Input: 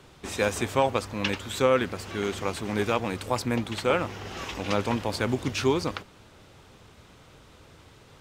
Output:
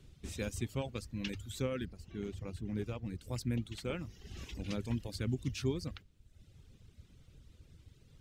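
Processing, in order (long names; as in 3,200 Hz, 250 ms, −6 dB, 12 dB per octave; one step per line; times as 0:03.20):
guitar amp tone stack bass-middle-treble 10-0-1
mains-hum notches 50/100 Hz
reverb reduction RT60 0.98 s
0:01.85–0:03.23: high-shelf EQ 2,200 Hz −10 dB
level +10.5 dB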